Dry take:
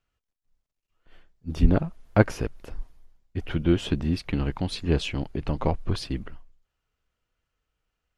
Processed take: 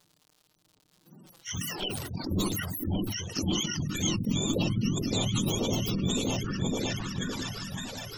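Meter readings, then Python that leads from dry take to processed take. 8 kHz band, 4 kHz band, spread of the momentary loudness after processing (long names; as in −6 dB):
+14.5 dB, +6.5 dB, 7 LU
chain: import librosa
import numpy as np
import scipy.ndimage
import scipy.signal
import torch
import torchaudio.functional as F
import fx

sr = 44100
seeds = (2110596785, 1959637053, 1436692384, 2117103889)

p1 = fx.octave_mirror(x, sr, pivot_hz=700.0)
p2 = fx.dmg_crackle(p1, sr, seeds[0], per_s=110.0, level_db=-48.0)
p3 = fx.dynamic_eq(p2, sr, hz=330.0, q=0.88, threshold_db=-46.0, ratio=4.0, max_db=7)
p4 = fx.schmitt(p3, sr, flips_db=-24.5)
p5 = p3 + (p4 * librosa.db_to_amplitude(-12.0))
p6 = fx.over_compress(p5, sr, threshold_db=-32.0, ratio=-0.5)
p7 = p6 + fx.echo_opening(p6, sr, ms=561, hz=400, octaves=2, feedback_pct=70, wet_db=0, dry=0)
p8 = fx.spec_gate(p7, sr, threshold_db=-25, keep='strong')
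p9 = fx.graphic_eq_10(p8, sr, hz=(250, 2000, 4000), db=(4, -6, 4))
p10 = fx.env_flanger(p9, sr, rest_ms=6.8, full_db=-26.5)
y = fx.sustainer(p10, sr, db_per_s=31.0)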